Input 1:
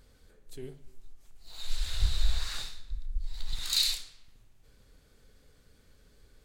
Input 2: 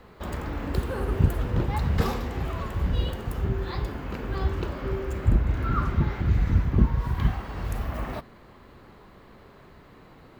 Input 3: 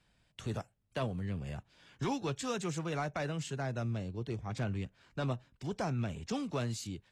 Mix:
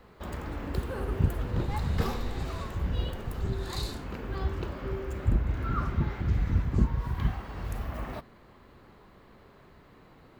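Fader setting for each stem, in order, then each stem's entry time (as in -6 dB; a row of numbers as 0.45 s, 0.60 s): -13.5 dB, -4.5 dB, -17.5 dB; 0.00 s, 0.00 s, 0.00 s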